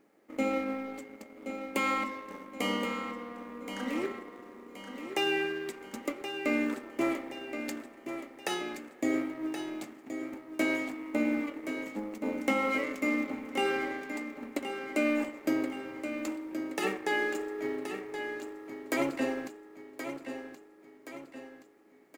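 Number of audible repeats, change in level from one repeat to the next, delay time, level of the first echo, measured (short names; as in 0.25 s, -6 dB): 5, -6.5 dB, 1.074 s, -9.0 dB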